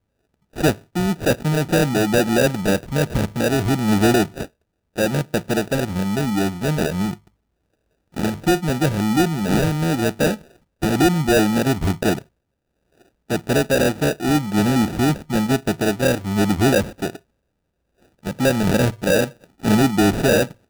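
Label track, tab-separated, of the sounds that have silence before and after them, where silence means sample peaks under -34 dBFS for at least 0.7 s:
8.160000	12.220000	sound
13.300000	17.160000	sound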